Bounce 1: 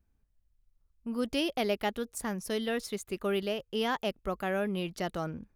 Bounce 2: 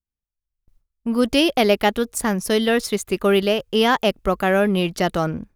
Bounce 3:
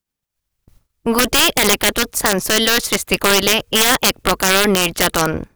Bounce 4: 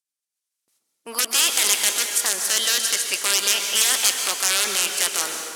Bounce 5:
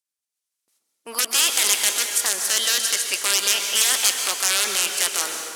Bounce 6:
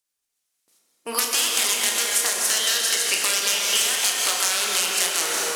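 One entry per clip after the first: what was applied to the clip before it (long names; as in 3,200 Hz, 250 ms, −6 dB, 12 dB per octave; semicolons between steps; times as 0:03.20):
in parallel at −11 dB: dead-zone distortion −48 dBFS; on the sum: noise gate with hold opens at −58 dBFS; automatic gain control gain up to 10.5 dB; level +1 dB
ceiling on every frequency bin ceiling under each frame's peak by 16 dB; in parallel at 0 dB: brickwall limiter −10.5 dBFS, peak gain reduction 8.5 dB; on the sum: wrap-around overflow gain 4 dB
Chebyshev band-pass filter 280–9,200 Hz, order 2; spectral tilt +4.5 dB per octave; dense smooth reverb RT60 2 s, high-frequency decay 0.75×, pre-delay 115 ms, DRR 3.5 dB; level −13 dB
low-shelf EQ 130 Hz −9 dB
downward compressor, threshold −24 dBFS, peak gain reduction 11 dB; on a send: flutter between parallel walls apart 5.8 metres, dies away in 0.23 s; on the sum: rectangular room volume 170 cubic metres, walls hard, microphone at 0.38 metres; level +5 dB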